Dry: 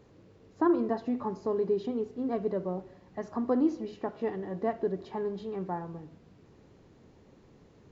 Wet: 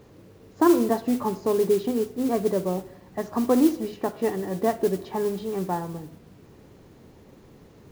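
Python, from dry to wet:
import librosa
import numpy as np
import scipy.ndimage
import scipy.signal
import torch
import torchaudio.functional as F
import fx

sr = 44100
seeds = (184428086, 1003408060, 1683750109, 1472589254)

y = fx.mod_noise(x, sr, seeds[0], snr_db=20)
y = F.gain(torch.from_numpy(y), 7.0).numpy()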